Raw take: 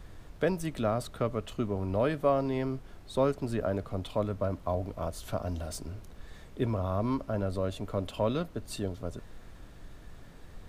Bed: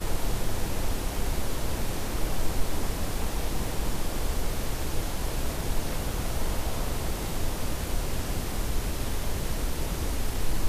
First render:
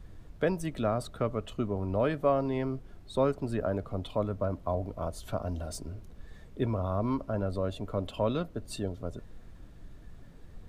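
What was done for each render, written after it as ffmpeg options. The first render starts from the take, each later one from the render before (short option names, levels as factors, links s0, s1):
-af "afftdn=nr=7:nf=-50"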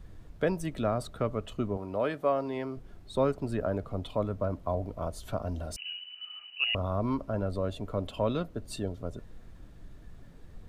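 -filter_complex "[0:a]asettb=1/sr,asplit=3[s0][s1][s2];[s0]atrim=end=1.774[s3];[s1]atrim=start=1.77:end=2.77,asetpts=PTS-STARTPTS,afade=t=in:d=0.004:c=qsin,afade=t=out:st=0.996:d=0.004:c=qsin,highpass=f=330:p=1[s4];[s2]atrim=start=2.766[s5];[s3][s4]acrossfade=d=0.004:c1=hsin:c2=qsin[s6];[s6][s5]acrossfade=d=0.004:c1=qsin:c2=hsin,asettb=1/sr,asplit=3[s7][s8][s9];[s7]atrim=end=5.764[s10];[s8]atrim=start=5.76:end=6.75,asetpts=PTS-STARTPTS,afade=t=in:d=0.004:c=qsin,afade=t=out:st=0.986:d=0.004:c=qsin,lowpass=f=2600:t=q:w=0.5098,lowpass=f=2600:t=q:w=0.6013,lowpass=f=2600:t=q:w=0.9,lowpass=f=2600:t=q:w=2.563,afreqshift=-3000[s11];[s9]atrim=start=6.746[s12];[s10][s11]acrossfade=d=0.004:c1=hsin:c2=qsin[s13];[s13][s12]acrossfade=d=0.004:c1=qsin:c2=hsin"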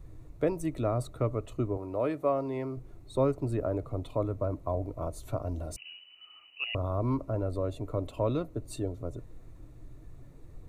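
-af "equalizer=f=125:t=o:w=0.33:g=7,equalizer=f=200:t=o:w=0.33:g=-12,equalizer=f=315:t=o:w=0.33:g=6,equalizer=f=800:t=o:w=0.33:g=-3,equalizer=f=1600:t=o:w=0.33:g=-11,equalizer=f=3150:t=o:w=0.33:g=-12,equalizer=f=5000:t=o:w=0.33:g=-8"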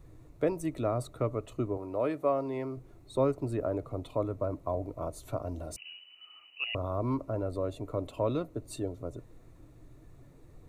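-af "lowshelf=f=96:g=-8.5"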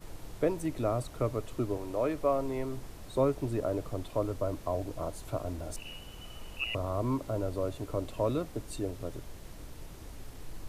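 -filter_complex "[1:a]volume=0.133[s0];[0:a][s0]amix=inputs=2:normalize=0"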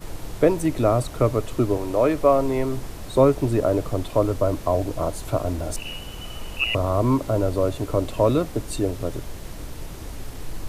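-af "volume=3.55"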